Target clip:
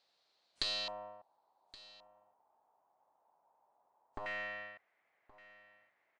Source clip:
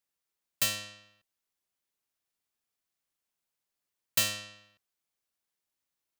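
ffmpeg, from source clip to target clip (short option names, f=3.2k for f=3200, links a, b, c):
-af "aeval=exprs='if(lt(val(0),0),0.708*val(0),val(0))':c=same,highpass=f=160:p=1,equalizer=f=680:t=o:w=1.3:g=13.5,acompressor=threshold=-47dB:ratio=2.5,alimiter=level_in=3dB:limit=-24dB:level=0:latency=1:release=231,volume=-3dB,aeval=exprs='0.0447*(cos(1*acos(clip(val(0)/0.0447,-1,1)))-cos(1*PI/2))+0.00316*(cos(6*acos(clip(val(0)/0.0447,-1,1)))-cos(6*PI/2))+0.0126*(cos(7*acos(clip(val(0)/0.0447,-1,1)))-cos(7*PI/2))':c=same,asetnsamples=n=441:p=0,asendcmd='0.88 lowpass f 910;4.26 lowpass f 2000',lowpass=f=4.2k:t=q:w=5.6,aecho=1:1:1122:0.106,volume=8dB" -ar 22050 -c:a wmav2 -b:a 128k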